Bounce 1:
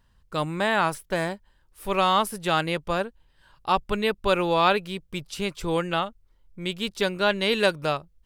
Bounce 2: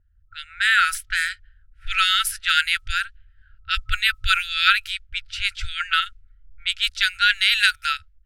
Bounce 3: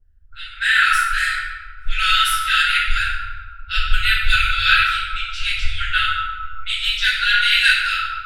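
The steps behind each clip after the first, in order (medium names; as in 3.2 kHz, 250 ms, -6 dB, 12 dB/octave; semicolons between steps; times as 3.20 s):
FFT band-reject 100–1300 Hz; level-controlled noise filter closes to 680 Hz, open at -28.5 dBFS; level rider gain up to 8.5 dB; trim +2 dB
reverberation RT60 1.8 s, pre-delay 5 ms, DRR -15 dB; trim -14 dB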